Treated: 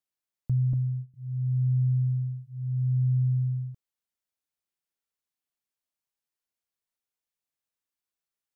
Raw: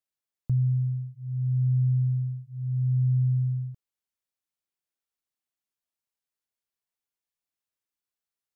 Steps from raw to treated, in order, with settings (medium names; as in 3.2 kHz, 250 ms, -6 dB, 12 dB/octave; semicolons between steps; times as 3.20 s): 0.73–1.14 s: gate -32 dBFS, range -16 dB; trim -1 dB